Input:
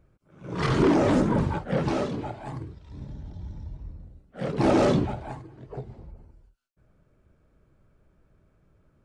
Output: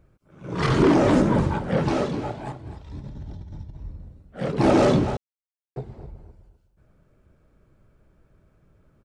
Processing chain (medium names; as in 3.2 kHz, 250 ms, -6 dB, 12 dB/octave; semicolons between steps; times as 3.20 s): 2.52–3.75 s: compressor with a negative ratio -39 dBFS, ratio -0.5; feedback delay 255 ms, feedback 22%, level -13 dB; 5.17–5.76 s: mute; trim +3 dB